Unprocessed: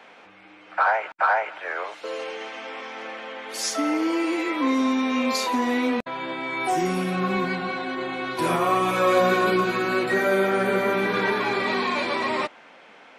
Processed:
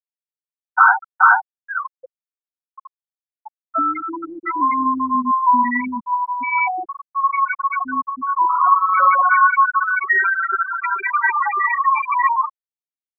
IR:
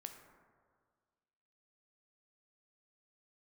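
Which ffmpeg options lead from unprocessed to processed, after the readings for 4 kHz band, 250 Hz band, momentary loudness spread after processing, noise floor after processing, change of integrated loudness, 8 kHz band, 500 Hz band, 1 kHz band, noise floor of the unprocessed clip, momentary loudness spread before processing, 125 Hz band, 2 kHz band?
under -40 dB, -4.5 dB, 13 LU, under -85 dBFS, +6.5 dB, under -40 dB, -16.5 dB, +10.0 dB, -49 dBFS, 12 LU, under -20 dB, +7.5 dB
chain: -filter_complex "[0:a]acrossover=split=1300[a][b];[a]acompressor=threshold=-36dB:ratio=16[c];[c][b]amix=inputs=2:normalize=0,bandreject=f=1.7k:w=20,bandreject=f=53.31:t=h:w=4,bandreject=f=106.62:t=h:w=4,bandreject=f=159.93:t=h:w=4,bandreject=f=213.24:t=h:w=4,bandreject=f=266.55:t=h:w=4,bandreject=f=319.86:t=h:w=4,bandreject=f=373.17:t=h:w=4,bandreject=f=426.48:t=h:w=4,bandreject=f=479.79:t=h:w=4,bandreject=f=533.1:t=h:w=4,bandreject=f=586.41:t=h:w=4,bandreject=f=639.72:t=h:w=4,bandreject=f=693.03:t=h:w=4,bandreject=f=746.34:t=h:w=4,bandreject=f=799.65:t=h:w=4,bandreject=f=852.96:t=h:w=4,bandreject=f=906.27:t=h:w=4,bandreject=f=959.58:t=h:w=4,bandreject=f=1.01289k:t=h:w=4,bandreject=f=1.0662k:t=h:w=4,bandreject=f=1.11951k:t=h:w=4,bandreject=f=1.17282k:t=h:w=4,bandreject=f=1.22613k:t=h:w=4,bandreject=f=1.27944k:t=h:w=4,bandreject=f=1.33275k:t=h:w=4,asoftclip=type=tanh:threshold=-18dB,asplit=2[d][e];[e]adelay=218,lowpass=f=3.2k:p=1,volume=-17dB,asplit=2[f][g];[g]adelay=218,lowpass=f=3.2k:p=1,volume=0.45,asplit=2[h][i];[i]adelay=218,lowpass=f=3.2k:p=1,volume=0.45,asplit=2[j][k];[k]adelay=218,lowpass=f=3.2k:p=1,volume=0.45[l];[d][f][h][j][l]amix=inputs=5:normalize=0,acontrast=90,equalizer=f=125:t=o:w=1:g=-3,equalizer=f=250:t=o:w=1:g=12,equalizer=f=1k:t=o:w=1:g=11,equalizer=f=2k:t=o:w=1:g=3,equalizer=f=4k:t=o:w=1:g=-8,equalizer=f=8k:t=o:w=1:g=-7,afftfilt=real='re*gte(hypot(re,im),0.631)':imag='im*gte(hypot(re,im),0.631)':win_size=1024:overlap=0.75,equalizer=f=330:w=1:g=-9.5,volume=4dB"

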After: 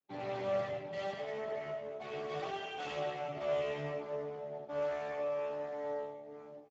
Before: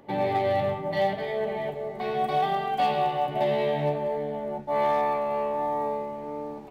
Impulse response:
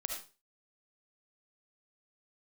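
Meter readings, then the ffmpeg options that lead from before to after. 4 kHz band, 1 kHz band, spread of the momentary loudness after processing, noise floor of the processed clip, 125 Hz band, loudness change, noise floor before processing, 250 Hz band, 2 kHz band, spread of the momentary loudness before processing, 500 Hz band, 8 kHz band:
-9.5 dB, -17.0 dB, 7 LU, -51 dBFS, -13.5 dB, -11.5 dB, -38 dBFS, -14.0 dB, -9.0 dB, 8 LU, -9.5 dB, n/a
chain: -filter_complex "[0:a]highpass=f=49:w=0.5412,highpass=f=49:w=1.3066,bandreject=f=950:w=11,agate=range=-33dB:threshold=-31dB:ratio=3:detection=peak,flanger=delay=7.4:depth=2.1:regen=-67:speed=0.57:shape=sinusoidal,aecho=1:1:7.3:0.65,adynamicequalizer=threshold=0.00224:dfrequency=2700:dqfactor=1.7:tfrequency=2700:tqfactor=1.7:attack=5:release=100:ratio=0.375:range=3:mode=boostabove:tftype=bell,aeval=exprs='clip(val(0),-1,0.0178)':c=same[a];[1:a]atrim=start_sample=2205[b];[a][b]afir=irnorm=-1:irlink=0,volume=-8dB" -ar 16000 -c:a libspeex -b:a 13k

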